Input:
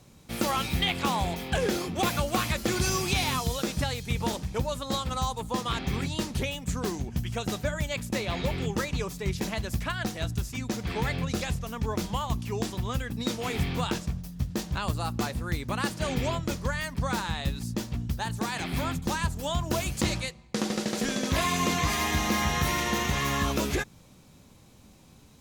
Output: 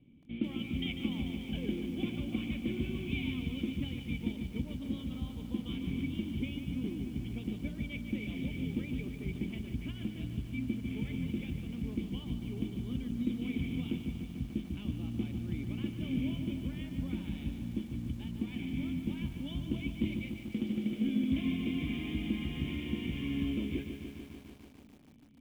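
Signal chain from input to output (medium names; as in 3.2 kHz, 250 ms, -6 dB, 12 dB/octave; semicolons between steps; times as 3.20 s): dynamic bell 560 Hz, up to -3 dB, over -42 dBFS, Q 0.75; cascade formant filter i; bit-crushed delay 147 ms, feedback 80%, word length 10-bit, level -8 dB; trim +3 dB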